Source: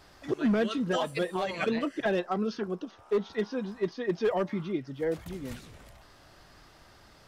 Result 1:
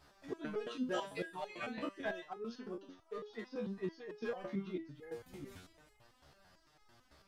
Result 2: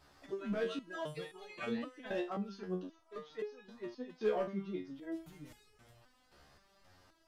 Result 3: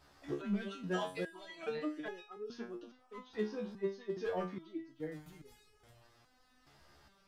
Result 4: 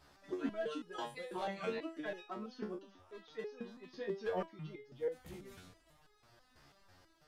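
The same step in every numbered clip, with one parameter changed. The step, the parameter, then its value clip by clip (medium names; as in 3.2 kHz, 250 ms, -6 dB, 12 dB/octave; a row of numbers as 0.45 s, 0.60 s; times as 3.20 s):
resonator arpeggio, rate: 9 Hz, 3.8 Hz, 2.4 Hz, 6.1 Hz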